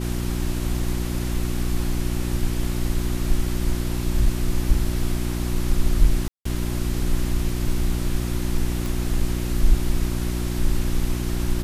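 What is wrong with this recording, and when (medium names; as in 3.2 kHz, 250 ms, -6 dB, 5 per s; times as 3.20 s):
hum 60 Hz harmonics 6 -26 dBFS
6.28–6.45 s: dropout 174 ms
8.86 s: pop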